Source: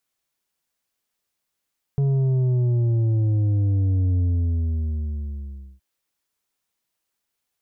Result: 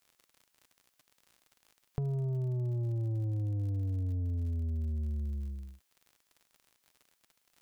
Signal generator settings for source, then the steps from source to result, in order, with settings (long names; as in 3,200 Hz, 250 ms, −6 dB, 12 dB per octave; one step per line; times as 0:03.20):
bass drop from 140 Hz, over 3.82 s, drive 6.5 dB, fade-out 1.62 s, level −18 dB
tilt shelving filter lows −3.5 dB, about 660 Hz
downward compressor 10 to 1, threshold −32 dBFS
surface crackle 59 per second −47 dBFS